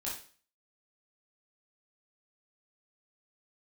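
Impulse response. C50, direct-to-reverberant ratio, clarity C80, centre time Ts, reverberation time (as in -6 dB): 4.0 dB, -6.5 dB, 10.0 dB, 37 ms, 0.40 s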